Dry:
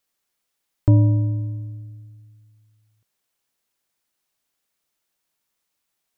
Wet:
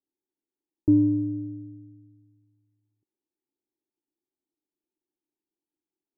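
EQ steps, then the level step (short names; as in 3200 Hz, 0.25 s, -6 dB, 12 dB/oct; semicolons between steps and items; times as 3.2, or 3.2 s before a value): vocal tract filter u; dynamic EQ 570 Hz, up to -3 dB, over -39 dBFS, Q 1.2; bell 370 Hz +12 dB 0.52 oct; 0.0 dB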